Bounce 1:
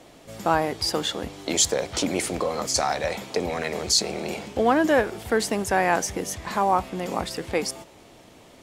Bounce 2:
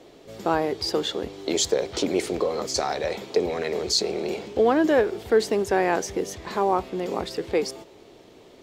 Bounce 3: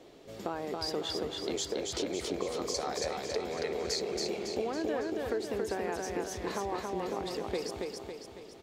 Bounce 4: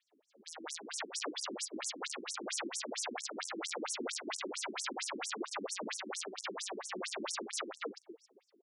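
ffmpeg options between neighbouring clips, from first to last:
-af "equalizer=f=400:t=o:w=0.67:g=11,equalizer=f=4000:t=o:w=0.67:g=4,equalizer=f=10000:t=o:w=0.67:g=-7,volume=0.631"
-filter_complex "[0:a]acompressor=threshold=0.0447:ratio=6,asplit=2[s0][s1];[s1]aecho=0:1:277|554|831|1108|1385|1662|1939:0.708|0.361|0.184|0.0939|0.0479|0.0244|0.0125[s2];[s0][s2]amix=inputs=2:normalize=0,volume=0.562"
-af "aeval=exprs='(mod(42.2*val(0)+1,2)-1)/42.2':c=same,agate=range=0.112:threshold=0.0112:ratio=16:detection=peak,afftfilt=real='re*between(b*sr/1024,250*pow(7900/250,0.5+0.5*sin(2*PI*4.4*pts/sr))/1.41,250*pow(7900/250,0.5+0.5*sin(2*PI*4.4*pts/sr))*1.41)':imag='im*between(b*sr/1024,250*pow(7900/250,0.5+0.5*sin(2*PI*4.4*pts/sr))/1.41,250*pow(7900/250,0.5+0.5*sin(2*PI*4.4*pts/sr))*1.41)':win_size=1024:overlap=0.75,volume=2.24"

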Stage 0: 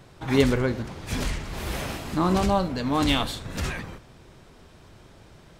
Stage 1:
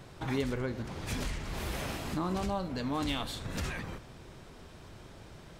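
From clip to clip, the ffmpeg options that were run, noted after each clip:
-af "acompressor=threshold=0.0178:ratio=2.5"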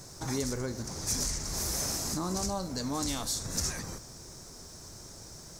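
-filter_complex "[0:a]highshelf=f=4200:t=q:w=3:g=12,asplit=2[s0][s1];[s1]alimiter=limit=0.0668:level=0:latency=1:release=25,volume=0.841[s2];[s0][s2]amix=inputs=2:normalize=0,acrusher=bits=8:mix=0:aa=0.5,volume=0.531"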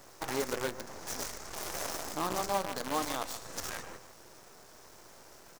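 -filter_complex "[0:a]acrossover=split=370 2200:gain=0.126 1 0.2[s0][s1][s2];[s0][s1][s2]amix=inputs=3:normalize=0,aecho=1:1:141:0.316,acrusher=bits=7:dc=4:mix=0:aa=0.000001,volume=1.78"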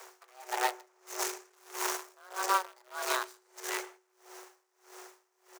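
-af "afreqshift=370,aecho=1:1:162:0.133,aeval=exprs='val(0)*pow(10,-30*(0.5-0.5*cos(2*PI*1.6*n/s))/20)':c=same,volume=1.88"

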